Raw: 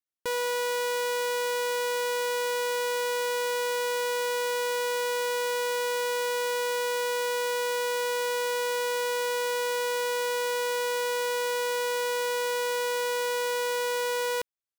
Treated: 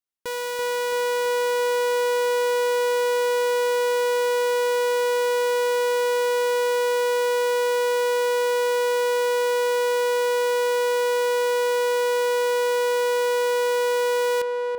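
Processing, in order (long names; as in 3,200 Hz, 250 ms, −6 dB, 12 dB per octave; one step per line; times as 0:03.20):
feedback echo with a low-pass in the loop 334 ms, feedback 73%, low-pass 1,500 Hz, level −4 dB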